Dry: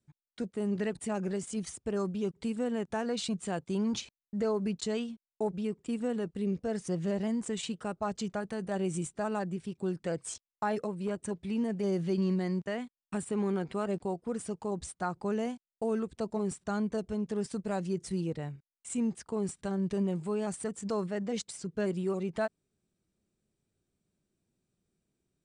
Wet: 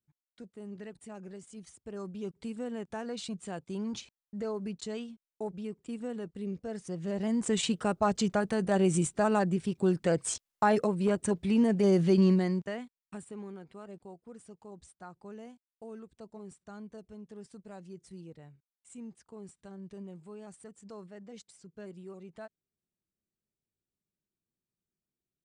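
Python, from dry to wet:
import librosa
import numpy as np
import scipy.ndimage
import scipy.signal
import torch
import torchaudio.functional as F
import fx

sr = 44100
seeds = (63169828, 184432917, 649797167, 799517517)

y = fx.gain(x, sr, db=fx.line((1.67, -12.0), (2.28, -5.0), (6.98, -5.0), (7.54, 6.5), (12.27, 6.5), (12.83, -4.0), (13.57, -14.0)))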